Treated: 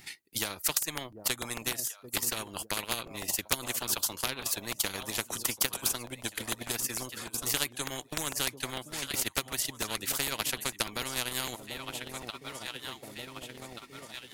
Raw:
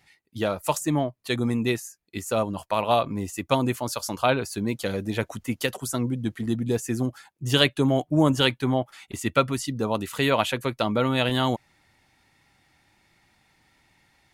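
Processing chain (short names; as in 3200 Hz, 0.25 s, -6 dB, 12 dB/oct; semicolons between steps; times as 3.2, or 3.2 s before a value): in parallel at -1.5 dB: compressor, threshold -31 dBFS, peak gain reduction 16.5 dB; on the sum: tilt +3 dB/oct; on a send: echo with dull and thin repeats by turns 0.741 s, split 820 Hz, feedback 63%, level -13.5 dB; on the sum: transient shaper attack +12 dB, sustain -9 dB; resonant low shelf 470 Hz +7.5 dB, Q 1.5; crackling interface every 0.15 s, samples 128, repeat, from 0.67; spectral compressor 4:1; gain -14 dB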